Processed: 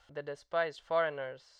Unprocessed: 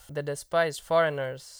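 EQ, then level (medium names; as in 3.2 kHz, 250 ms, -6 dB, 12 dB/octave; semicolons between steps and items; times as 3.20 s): distance through air 190 m; peaking EQ 140 Hz -4 dB 0.74 oct; bass shelf 350 Hz -8.5 dB; -4.5 dB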